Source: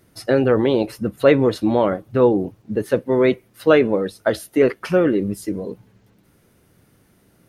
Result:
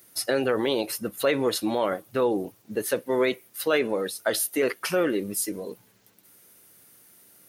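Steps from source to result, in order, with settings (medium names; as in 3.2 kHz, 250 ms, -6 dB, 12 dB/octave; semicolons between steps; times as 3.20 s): peak limiter -9 dBFS, peak gain reduction 7.5 dB; RIAA curve recording; trim -2.5 dB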